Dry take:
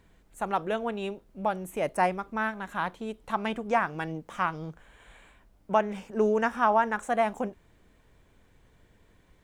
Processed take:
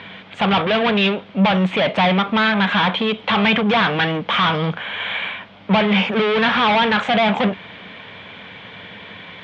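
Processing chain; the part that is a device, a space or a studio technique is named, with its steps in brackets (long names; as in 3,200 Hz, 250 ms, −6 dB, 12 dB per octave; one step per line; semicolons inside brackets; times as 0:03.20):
overdrive pedal into a guitar cabinet (mid-hump overdrive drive 36 dB, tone 4,700 Hz, clips at −10.5 dBFS; loudspeaker in its box 100–3,900 Hz, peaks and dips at 100 Hz +9 dB, 190 Hz +9 dB, 350 Hz −8 dB, 2,300 Hz +6 dB, 3,300 Hz +10 dB)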